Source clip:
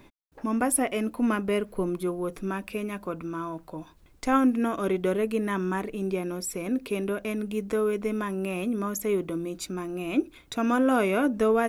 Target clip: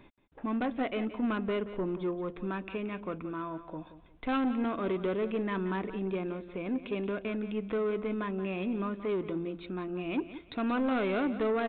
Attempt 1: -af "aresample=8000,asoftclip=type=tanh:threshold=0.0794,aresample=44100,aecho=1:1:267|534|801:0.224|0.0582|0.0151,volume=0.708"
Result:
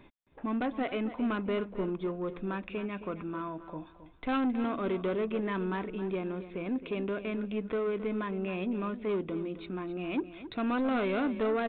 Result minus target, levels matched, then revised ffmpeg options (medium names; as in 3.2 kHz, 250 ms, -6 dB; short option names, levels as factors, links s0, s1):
echo 90 ms late
-af "aresample=8000,asoftclip=type=tanh:threshold=0.0794,aresample=44100,aecho=1:1:177|354|531:0.224|0.0582|0.0151,volume=0.708"